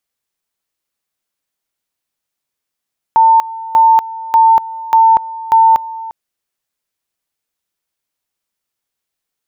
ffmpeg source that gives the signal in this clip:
ffmpeg -f lavfi -i "aevalsrc='pow(10,(-4.5-18*gte(mod(t,0.59),0.24))/20)*sin(2*PI*899*t)':duration=2.95:sample_rate=44100" out.wav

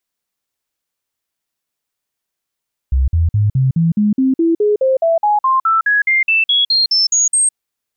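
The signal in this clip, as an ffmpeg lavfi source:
ffmpeg -f lavfi -i "aevalsrc='0.316*clip(min(mod(t,0.21),0.16-mod(t,0.21))/0.005,0,1)*sin(2*PI*65.8*pow(2,floor(t/0.21)/3)*mod(t,0.21))':duration=4.62:sample_rate=44100" out.wav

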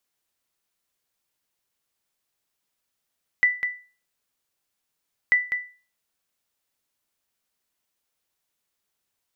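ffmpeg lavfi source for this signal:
ffmpeg -f lavfi -i "aevalsrc='0.282*(sin(2*PI*1980*mod(t,1.89))*exp(-6.91*mod(t,1.89)/0.36)+0.398*sin(2*PI*1980*max(mod(t,1.89)-0.2,0))*exp(-6.91*max(mod(t,1.89)-0.2,0)/0.36))':duration=3.78:sample_rate=44100" out.wav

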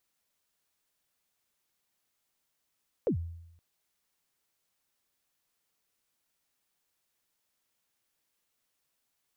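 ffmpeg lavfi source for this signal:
ffmpeg -f lavfi -i "aevalsrc='0.075*pow(10,-3*t/0.84)*sin(2*PI*(560*0.096/log(84/560)*(exp(log(84/560)*min(t,0.096)/0.096)-1)+84*max(t-0.096,0)))':duration=0.52:sample_rate=44100" out.wav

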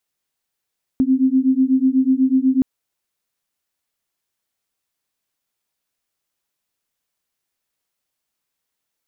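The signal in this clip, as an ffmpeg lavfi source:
ffmpeg -f lavfi -i "aevalsrc='0.158*(sin(2*PI*258*t)+sin(2*PI*266.1*t))':duration=1.62:sample_rate=44100" out.wav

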